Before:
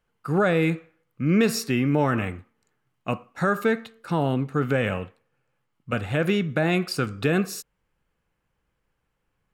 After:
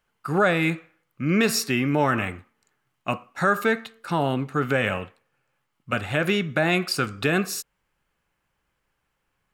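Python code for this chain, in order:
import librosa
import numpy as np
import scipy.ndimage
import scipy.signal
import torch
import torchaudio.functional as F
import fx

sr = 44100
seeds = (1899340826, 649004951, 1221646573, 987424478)

y = fx.low_shelf(x, sr, hz=460.0, db=-7.5)
y = fx.notch(y, sr, hz=480.0, q=12.0)
y = F.gain(torch.from_numpy(y), 4.5).numpy()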